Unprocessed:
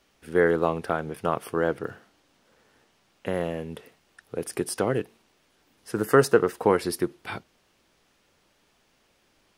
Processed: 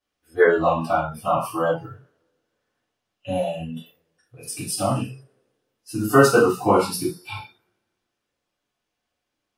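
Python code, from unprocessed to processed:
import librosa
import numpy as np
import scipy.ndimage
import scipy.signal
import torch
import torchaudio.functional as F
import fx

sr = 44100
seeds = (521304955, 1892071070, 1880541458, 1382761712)

y = fx.rev_double_slope(x, sr, seeds[0], early_s=0.45, late_s=1.6, knee_db=-18, drr_db=-10.0)
y = fx.noise_reduce_blind(y, sr, reduce_db=21)
y = F.gain(torch.from_numpy(y), -4.0).numpy()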